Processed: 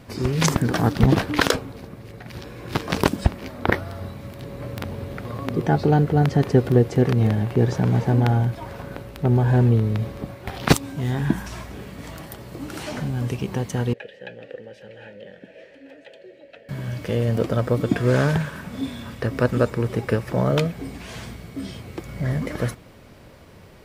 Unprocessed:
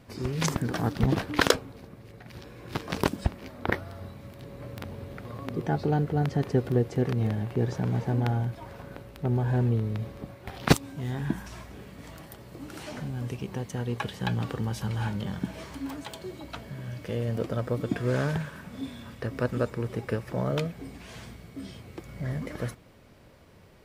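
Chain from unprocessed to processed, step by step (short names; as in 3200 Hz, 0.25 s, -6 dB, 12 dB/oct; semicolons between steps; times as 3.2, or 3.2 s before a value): 13.93–16.69 vowel filter e; maximiser +9 dB; gain -1 dB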